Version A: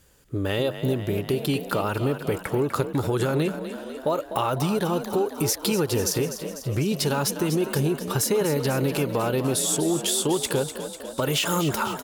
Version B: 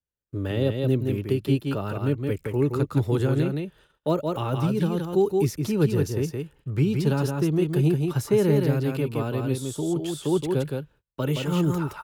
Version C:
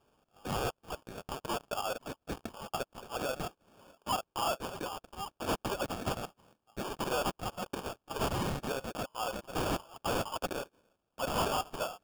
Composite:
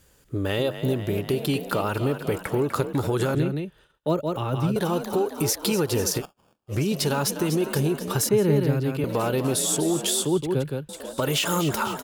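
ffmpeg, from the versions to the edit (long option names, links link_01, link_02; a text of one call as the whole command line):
ffmpeg -i take0.wav -i take1.wav -i take2.wav -filter_complex "[1:a]asplit=3[link_01][link_02][link_03];[0:a]asplit=5[link_04][link_05][link_06][link_07][link_08];[link_04]atrim=end=3.352[link_09];[link_01]atrim=start=3.348:end=4.762[link_10];[link_05]atrim=start=4.758:end=6.23[link_11];[2:a]atrim=start=6.17:end=6.74[link_12];[link_06]atrim=start=6.68:end=8.292[link_13];[link_02]atrim=start=8.288:end=9.042[link_14];[link_07]atrim=start=9.038:end=10.252[link_15];[link_03]atrim=start=10.248:end=10.892[link_16];[link_08]atrim=start=10.888[link_17];[link_09][link_10]acrossfade=duration=0.004:curve1=hsin:curve2=hsin[link_18];[link_18][link_11]acrossfade=duration=0.004:curve1=hsin:curve2=hsin[link_19];[link_19][link_12]acrossfade=duration=0.06:curve1=tri:curve2=tri[link_20];[link_20][link_13]acrossfade=duration=0.06:curve1=tri:curve2=tri[link_21];[link_21][link_14]acrossfade=duration=0.004:curve1=hsin:curve2=hsin[link_22];[link_22][link_15]acrossfade=duration=0.004:curve1=hsin:curve2=hsin[link_23];[link_23][link_16]acrossfade=duration=0.004:curve1=hsin:curve2=hsin[link_24];[link_24][link_17]acrossfade=duration=0.004:curve1=hsin:curve2=hsin" out.wav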